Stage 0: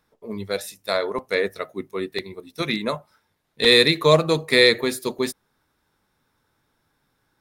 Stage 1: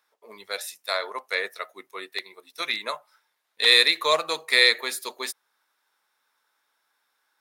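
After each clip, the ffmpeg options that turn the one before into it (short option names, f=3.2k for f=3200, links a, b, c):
-af "highpass=870"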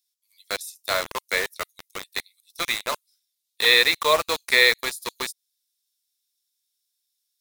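-filter_complex "[0:a]acrossover=split=3900[a][b];[a]acrusher=bits=4:mix=0:aa=0.000001[c];[b]acompressor=threshold=-35dB:ratio=10[d];[c][d]amix=inputs=2:normalize=0,volume=2.5dB"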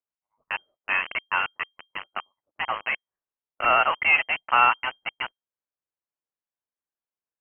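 -filter_complex "[0:a]asplit=2[a][b];[b]acrusher=bits=3:mix=0:aa=0.000001,volume=-5dB[c];[a][c]amix=inputs=2:normalize=0,lowpass=f=2.7k:t=q:w=0.5098,lowpass=f=2.7k:t=q:w=0.6013,lowpass=f=2.7k:t=q:w=0.9,lowpass=f=2.7k:t=q:w=2.563,afreqshift=-3200,volume=-4dB"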